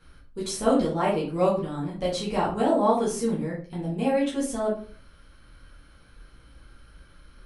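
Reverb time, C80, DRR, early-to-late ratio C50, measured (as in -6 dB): 0.45 s, 11.0 dB, -7.5 dB, 5.5 dB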